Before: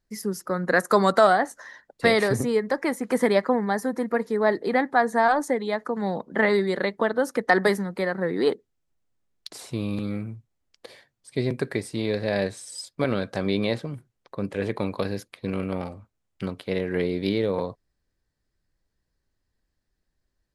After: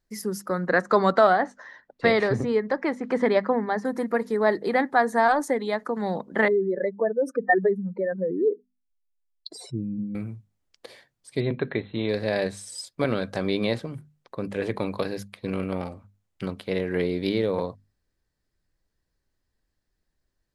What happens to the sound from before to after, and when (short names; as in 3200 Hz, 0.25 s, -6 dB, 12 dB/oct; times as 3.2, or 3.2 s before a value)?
0.67–3.85 air absorption 150 m
6.48–10.15 spectral contrast raised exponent 2.7
11.4–12.09 brick-wall FIR low-pass 4200 Hz
whole clip: notches 50/100/150/200/250 Hz